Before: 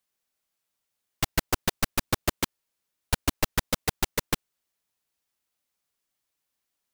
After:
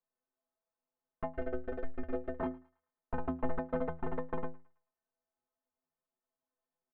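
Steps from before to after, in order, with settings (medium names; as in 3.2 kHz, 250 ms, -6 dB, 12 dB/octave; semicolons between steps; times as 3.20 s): chunks repeated in reverse 102 ms, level -4.5 dB; low-pass 1.2 kHz 24 dB/octave; peaking EQ 97 Hz -10 dB 2.2 oct; comb 4.4 ms, depth 56%; in parallel at +1 dB: peak limiter -21.5 dBFS, peak gain reduction 9.5 dB; 1.26–2.36 s: on the sum: static phaser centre 400 Hz, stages 4; inharmonic resonator 76 Hz, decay 0.43 s, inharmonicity 0.03; saturation -22 dBFS, distortion -25 dB; on a send: thinning echo 109 ms, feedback 42%, high-pass 750 Hz, level -21 dB; on the sum: trim +2 dB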